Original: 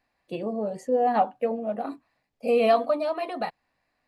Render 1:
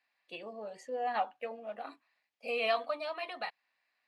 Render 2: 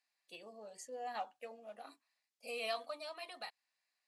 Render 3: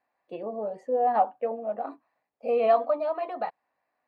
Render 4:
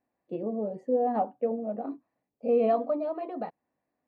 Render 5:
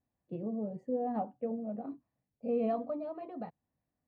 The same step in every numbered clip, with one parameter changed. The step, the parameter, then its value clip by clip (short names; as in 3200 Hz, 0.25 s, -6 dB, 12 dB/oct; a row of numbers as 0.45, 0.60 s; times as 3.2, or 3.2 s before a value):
band-pass, frequency: 2800, 7300, 810, 310, 120 Hz